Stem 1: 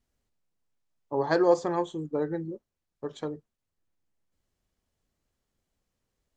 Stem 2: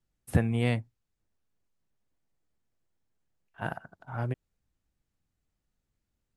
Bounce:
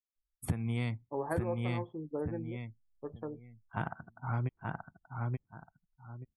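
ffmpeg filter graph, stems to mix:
-filter_complex "[0:a]lowpass=2000,volume=0.447[s0];[1:a]aecho=1:1:0.9:0.49,adelay=150,volume=1.06,asplit=2[s1][s2];[s2]volume=0.562,aecho=0:1:879|1758|2637|3516:1|0.24|0.0576|0.0138[s3];[s0][s1][s3]amix=inputs=3:normalize=0,afftdn=nr=33:nf=-54,acompressor=threshold=0.0355:ratio=10"

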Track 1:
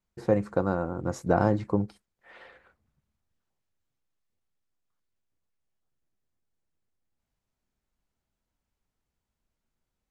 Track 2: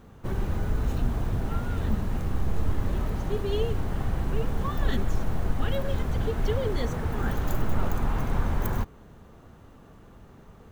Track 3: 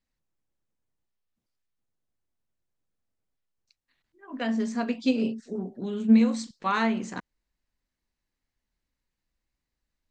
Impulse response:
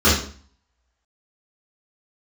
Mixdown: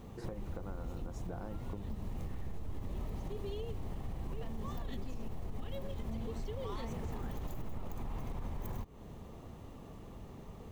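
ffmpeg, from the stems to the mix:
-filter_complex "[0:a]acompressor=threshold=0.0282:ratio=6,volume=0.631,asplit=2[s0][s1];[1:a]volume=1.12[s2];[2:a]equalizer=f=1100:w=1.5:g=10,asoftclip=type=tanh:threshold=0.112,volume=0.398[s3];[s1]apad=whole_len=472694[s4];[s2][s4]sidechaincompress=threshold=0.00501:ratio=3:attack=8.6:release=422[s5];[s5][s3]amix=inputs=2:normalize=0,equalizer=f=1500:t=o:w=0.4:g=-11.5,alimiter=limit=0.0841:level=0:latency=1:release=104,volume=1[s6];[s0][s6]amix=inputs=2:normalize=0,acompressor=threshold=0.0112:ratio=3"

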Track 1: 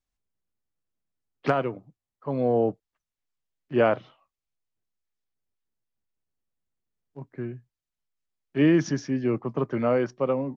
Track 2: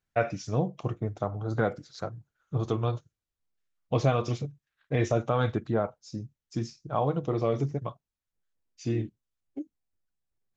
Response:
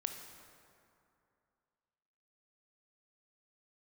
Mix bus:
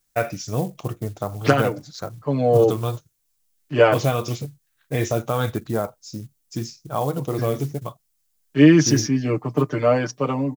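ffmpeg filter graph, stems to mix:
-filter_complex "[0:a]bass=f=250:g=1,treble=f=4000:g=7,aecho=1:1:6.7:0.95,volume=1.33[s0];[1:a]acrusher=bits=7:mode=log:mix=0:aa=0.000001,volume=1.41[s1];[s0][s1]amix=inputs=2:normalize=0,highshelf=f=5400:g=12"

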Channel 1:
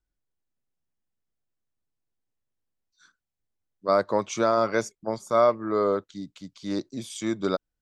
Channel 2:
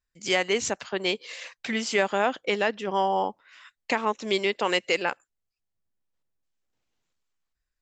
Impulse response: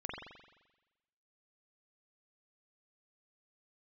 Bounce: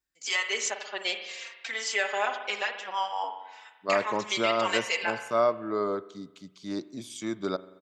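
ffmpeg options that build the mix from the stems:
-filter_complex "[0:a]highpass=f=130:p=1,bandreject=f=510:w=12,volume=0.596,asplit=2[s0][s1];[s1]volume=0.158[s2];[1:a]highpass=790,highshelf=f=7000:g=5.5,asplit=2[s3][s4];[s4]adelay=3.9,afreqshift=-0.65[s5];[s3][s5]amix=inputs=2:normalize=1,volume=0.794,asplit=2[s6][s7];[s7]volume=0.668[s8];[2:a]atrim=start_sample=2205[s9];[s2][s8]amix=inputs=2:normalize=0[s10];[s10][s9]afir=irnorm=-1:irlink=0[s11];[s0][s6][s11]amix=inputs=3:normalize=0"

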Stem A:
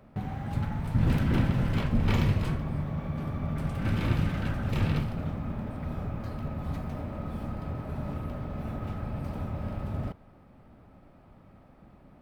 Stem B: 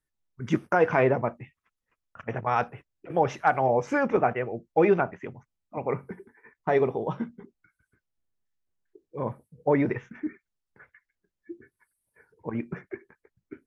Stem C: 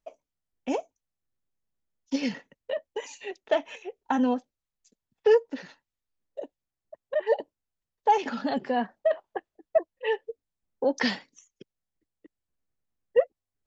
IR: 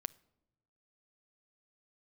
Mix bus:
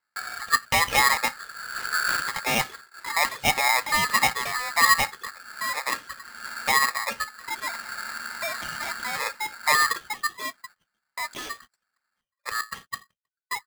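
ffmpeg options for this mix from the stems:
-filter_complex "[0:a]volume=0.891[s0];[1:a]lowpass=f=2400:w=0.5412,lowpass=f=2400:w=1.3066,aecho=1:1:3.1:0.52,volume=1.12,asplit=2[s1][s2];[2:a]aemphasis=mode=production:type=bsi,alimiter=limit=0.1:level=0:latency=1:release=12,adelay=350,volume=0.708[s3];[s2]apad=whole_len=538521[s4];[s0][s4]sidechaincompress=threshold=0.0112:ratio=20:attack=5.1:release=457[s5];[s5][s1][s3]amix=inputs=3:normalize=0,agate=range=0.0501:threshold=0.00562:ratio=16:detection=peak,lowpass=f=2000:p=1,aeval=exprs='val(0)*sgn(sin(2*PI*1500*n/s))':c=same"

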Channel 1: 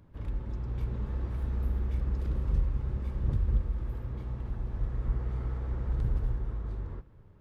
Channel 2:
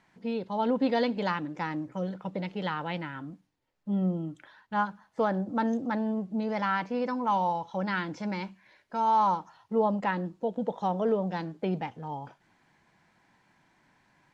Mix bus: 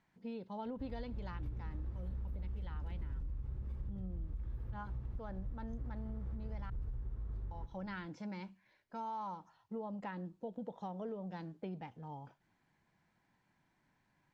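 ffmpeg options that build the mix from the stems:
-filter_complex "[0:a]alimiter=level_in=1.12:limit=0.0631:level=0:latency=1:release=26,volume=0.891,adelay=650,volume=0.668[s0];[1:a]volume=0.237,asplit=3[s1][s2][s3];[s1]atrim=end=6.7,asetpts=PTS-STARTPTS,afade=t=out:st=6.696:d=0.004:c=hsin[s4];[s2]atrim=start=6.7:end=7.51,asetpts=PTS-STARTPTS,volume=0[s5];[s3]atrim=start=7.51,asetpts=PTS-STARTPTS,afade=t=in:d=0.004:c=hsin[s6];[s4][s5][s6]concat=n=3:v=0:a=1,asplit=2[s7][s8];[s8]apad=whole_len=355303[s9];[s0][s9]sidechaincompress=threshold=0.00708:ratio=8:attack=16:release=198[s10];[s10][s7]amix=inputs=2:normalize=0,lowshelf=f=180:g=8.5,acompressor=threshold=0.0112:ratio=6"

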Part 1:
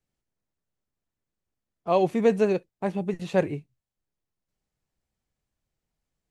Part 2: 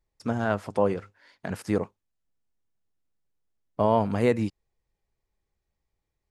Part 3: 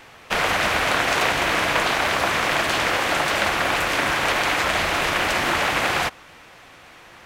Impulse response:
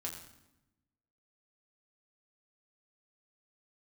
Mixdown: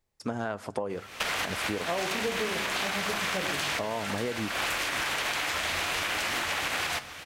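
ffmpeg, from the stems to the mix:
-filter_complex "[0:a]volume=0.841,asplit=2[s0][s1];[s1]volume=0.531[s2];[1:a]bass=f=250:g=-6,treble=f=4000:g=2,acompressor=threshold=0.0562:ratio=6,volume=1.19,asplit=3[s3][s4][s5];[s4]volume=0.119[s6];[2:a]highshelf=f=2000:g=9.5,acompressor=threshold=0.1:ratio=2,adelay=900,volume=1.26,asplit=2[s7][s8];[s8]volume=0.141[s9];[s5]apad=whole_len=359565[s10];[s7][s10]sidechaincompress=threshold=0.00355:ratio=4:attack=16:release=141[s11];[s0][s11]amix=inputs=2:normalize=0,flanger=delay=9.2:depth=7.8:regen=67:speed=0.32:shape=triangular,alimiter=limit=0.168:level=0:latency=1:release=167,volume=1[s12];[3:a]atrim=start_sample=2205[s13];[s2][s6][s9]amix=inputs=3:normalize=0[s14];[s14][s13]afir=irnorm=-1:irlink=0[s15];[s3][s12][s15]amix=inputs=3:normalize=0,acompressor=threshold=0.0447:ratio=6"

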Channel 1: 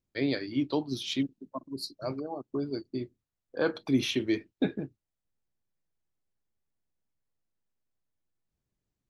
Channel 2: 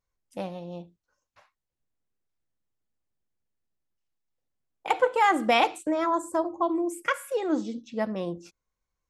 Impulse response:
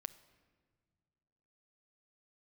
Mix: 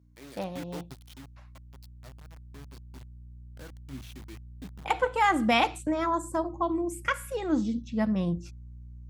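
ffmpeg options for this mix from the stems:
-filter_complex "[0:a]highpass=f=83:p=1,acrusher=bits=4:mix=0:aa=0.000001,volume=0.266[s0];[1:a]aeval=exprs='val(0)+0.00141*(sin(2*PI*60*n/s)+sin(2*PI*2*60*n/s)/2+sin(2*PI*3*60*n/s)/3+sin(2*PI*4*60*n/s)/4+sin(2*PI*5*60*n/s)/5)':c=same,volume=0.944,asplit=2[s1][s2];[s2]apad=whole_len=400937[s3];[s0][s3]sidechaingate=range=0.398:threshold=0.00316:ratio=16:detection=peak[s4];[s4][s1]amix=inputs=2:normalize=0,highpass=53,asubboost=boost=9:cutoff=140"

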